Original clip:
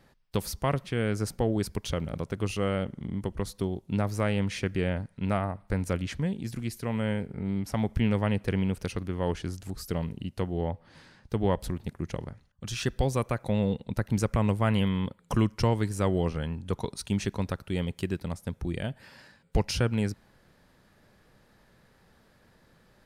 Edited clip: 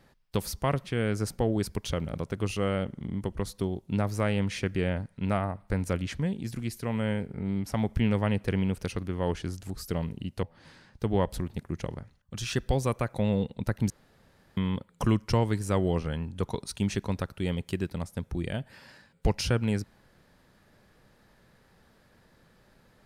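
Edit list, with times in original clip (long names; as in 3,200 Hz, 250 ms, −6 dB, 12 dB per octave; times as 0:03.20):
0:10.43–0:10.73: remove
0:14.20–0:14.87: fill with room tone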